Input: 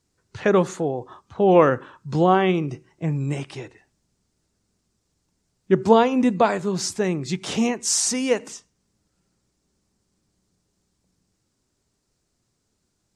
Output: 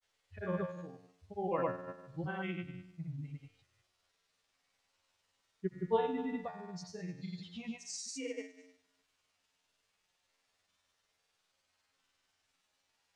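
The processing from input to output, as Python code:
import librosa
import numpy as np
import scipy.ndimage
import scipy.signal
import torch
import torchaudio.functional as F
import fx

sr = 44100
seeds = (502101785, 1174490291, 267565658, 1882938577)

y = fx.bin_expand(x, sr, power=2.0)
y = fx.low_shelf(y, sr, hz=160.0, db=10.0)
y = fx.dmg_noise_colour(y, sr, seeds[0], colour='white', level_db=-60.0)
y = scipy.signal.sosfilt(scipy.signal.butter(2, 5800.0, 'lowpass', fs=sr, output='sos'), y)
y = fx.peak_eq(y, sr, hz=290.0, db=-4.0, octaves=0.76)
y = fx.hum_notches(y, sr, base_hz=60, count=6)
y = fx.comb_fb(y, sr, f0_hz=90.0, decay_s=0.88, harmonics='all', damping=0.0, mix_pct=90)
y = fx.granulator(y, sr, seeds[1], grain_ms=100.0, per_s=20.0, spray_ms=100.0, spread_st=0)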